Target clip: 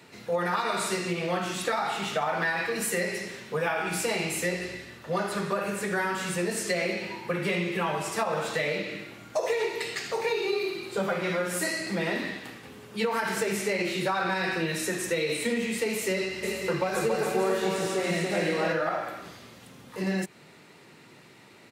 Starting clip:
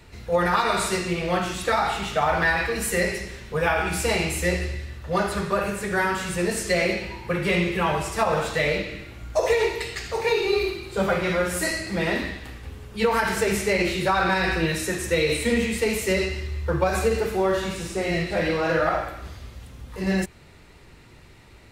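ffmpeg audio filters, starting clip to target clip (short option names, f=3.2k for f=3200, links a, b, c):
-filter_complex "[0:a]highpass=f=150:w=0.5412,highpass=f=150:w=1.3066,acompressor=threshold=-27dB:ratio=2.5,asplit=3[a][b][c];[a]afade=t=out:st=16.42:d=0.02[d];[b]aecho=1:1:280|448|548.8|609.3|645.6:0.631|0.398|0.251|0.158|0.1,afade=t=in:st=16.42:d=0.02,afade=t=out:st=18.72:d=0.02[e];[c]afade=t=in:st=18.72:d=0.02[f];[d][e][f]amix=inputs=3:normalize=0"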